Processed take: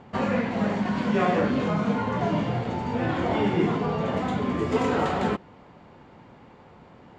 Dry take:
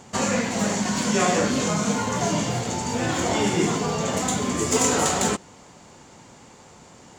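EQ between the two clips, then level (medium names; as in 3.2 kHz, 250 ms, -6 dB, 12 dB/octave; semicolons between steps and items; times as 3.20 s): distance through air 400 m; 0.0 dB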